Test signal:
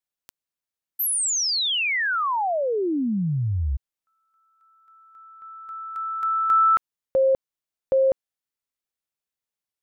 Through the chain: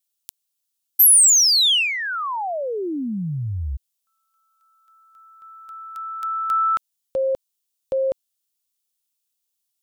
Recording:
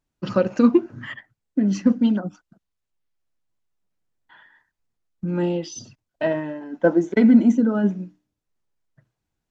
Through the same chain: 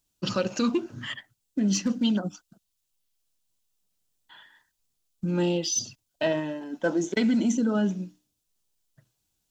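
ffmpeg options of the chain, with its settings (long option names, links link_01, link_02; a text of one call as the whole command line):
ffmpeg -i in.wav -filter_complex "[0:a]acrossover=split=1100[link_01][link_02];[link_01]alimiter=limit=-16dB:level=0:latency=1[link_03];[link_02]aexciter=amount=2.4:drive=8.5:freq=2800[link_04];[link_03][link_04]amix=inputs=2:normalize=0,volume=-2dB" out.wav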